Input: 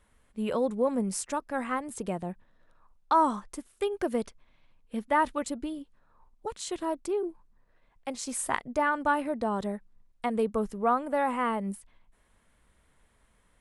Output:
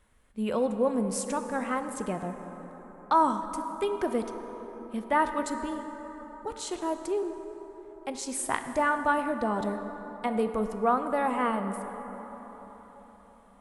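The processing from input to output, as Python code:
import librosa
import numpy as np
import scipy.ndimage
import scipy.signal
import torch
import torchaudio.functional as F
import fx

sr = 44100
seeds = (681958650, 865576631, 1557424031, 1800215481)

y = fx.rev_plate(x, sr, seeds[0], rt60_s=4.8, hf_ratio=0.4, predelay_ms=0, drr_db=7.0)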